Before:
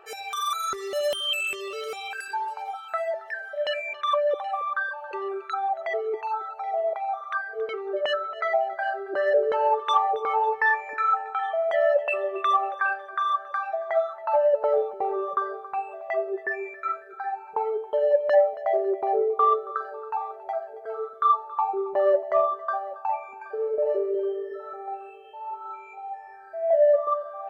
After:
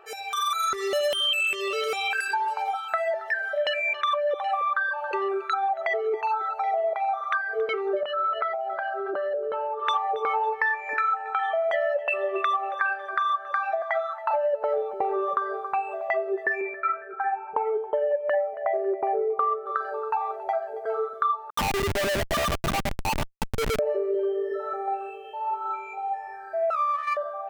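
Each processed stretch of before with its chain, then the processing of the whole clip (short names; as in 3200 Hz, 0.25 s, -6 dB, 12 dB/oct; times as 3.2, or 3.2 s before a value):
8.03–9.87 compressor 16:1, threshold -33 dBFS + speaker cabinet 140–3800 Hz, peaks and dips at 190 Hz +5 dB, 560 Hz +3 dB, 1300 Hz +8 dB, 1900 Hz -8 dB
13.82–14.31 HPF 740 Hz 24 dB/oct + high shelf 11000 Hz -4.5 dB
16.61–19.66 steep low-pass 2700 Hz + mismatched tape noise reduction decoder only
21.5–23.79 bell 3100 Hz +9 dB 2.4 oct + LFO band-pass saw up 9.2 Hz 210–1500 Hz + Schmitt trigger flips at -34 dBFS
26.7–27.17 minimum comb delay 0.33 ms + ladder high-pass 1100 Hz, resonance 75%
whole clip: AGC gain up to 6.5 dB; dynamic EQ 2200 Hz, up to +5 dB, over -34 dBFS, Q 0.95; compressor, threshold -23 dBFS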